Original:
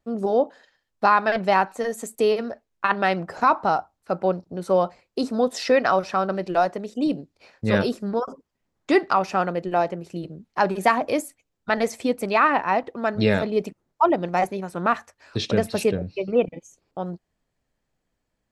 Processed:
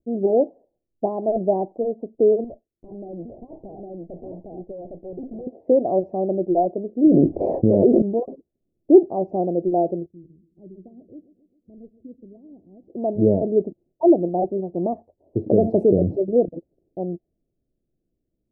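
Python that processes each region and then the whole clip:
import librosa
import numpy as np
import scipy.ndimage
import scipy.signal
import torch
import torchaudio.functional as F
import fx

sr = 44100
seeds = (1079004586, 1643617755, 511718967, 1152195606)

y = fx.chain(x, sr, fx.echo_single(ms=809, db=-4.0),
    fx.tube_stage(drive_db=34.0, bias=0.8), at=(2.44, 5.47))
y = fx.chain(y, sr, fx.low_shelf(hz=190.0, db=-5.5),
    fx.env_flatten(amount_pct=100), at=(7.04, 8.02))
y = fx.chain(y, sr, fx.tone_stack(knobs='10-0-1'),
    fx.echo_feedback(ms=134, feedback_pct=60, wet_db=-16.0), at=(10.06, 12.9))
y = fx.chain(y, sr, fx.low_shelf(hz=65.0, db=-10.0),
    fx.env_flatten(amount_pct=70), at=(15.46, 16.17))
y = fx.env_lowpass(y, sr, base_hz=410.0, full_db=-17.5)
y = scipy.signal.sosfilt(scipy.signal.ellip(4, 1.0, 50, 690.0, 'lowpass', fs=sr, output='sos'), y)
y = fx.peak_eq(y, sr, hz=350.0, db=8.5, octaves=0.42)
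y = F.gain(torch.from_numpy(y), 1.5).numpy()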